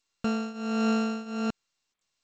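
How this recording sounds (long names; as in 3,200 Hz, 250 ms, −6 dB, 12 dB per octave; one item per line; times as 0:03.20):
a buzz of ramps at a fixed pitch in blocks of 32 samples
tremolo triangle 1.4 Hz, depth 90%
G.722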